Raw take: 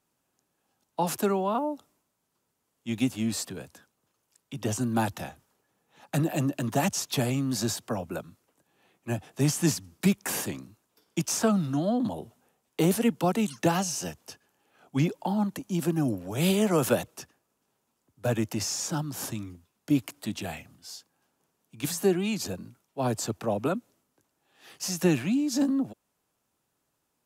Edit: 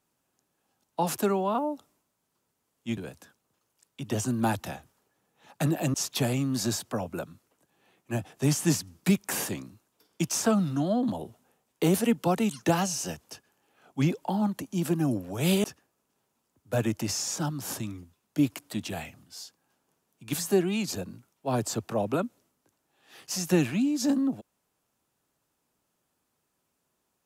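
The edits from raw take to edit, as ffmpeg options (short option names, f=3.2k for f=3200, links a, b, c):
-filter_complex "[0:a]asplit=4[a][b][c][d];[a]atrim=end=2.972[e];[b]atrim=start=3.498:end=6.472[f];[c]atrim=start=6.908:end=16.612[g];[d]atrim=start=17.158[h];[e][f]acrossfade=d=0.004:c1=hsin:c2=hsin[i];[i][g]acrossfade=d=0.004:c1=hsin:c2=hsin[j];[j][h]acrossfade=d=0.004:c1=hsin:c2=hsin"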